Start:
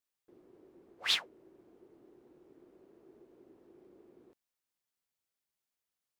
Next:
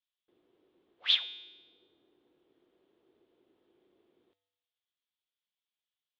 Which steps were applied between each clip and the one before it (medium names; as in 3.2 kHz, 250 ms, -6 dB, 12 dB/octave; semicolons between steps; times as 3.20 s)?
resonant low-pass 3.4 kHz, resonance Q 4.9; bass shelf 490 Hz -6 dB; feedback comb 98 Hz, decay 1.1 s, harmonics odd, mix 70%; trim +2.5 dB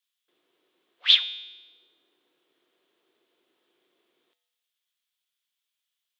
high-pass 120 Hz 24 dB/octave; tilt shelf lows -9.5 dB, about 690 Hz; band-stop 830 Hz, Q 16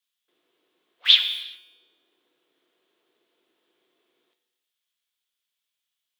in parallel at -11 dB: word length cut 6-bit, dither none; on the sum: gated-style reverb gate 420 ms falling, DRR 9.5 dB